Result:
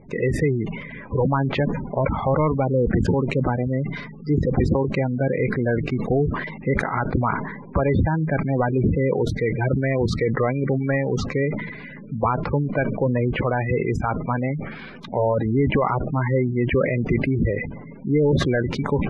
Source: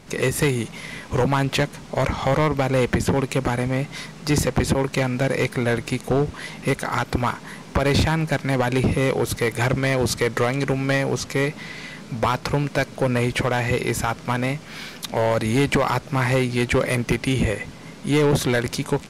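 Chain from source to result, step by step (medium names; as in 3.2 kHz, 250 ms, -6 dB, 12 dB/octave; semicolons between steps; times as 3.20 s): spectral gate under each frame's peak -15 dB strong; low-pass 2.1 kHz 12 dB/octave; decay stretcher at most 54 dB/s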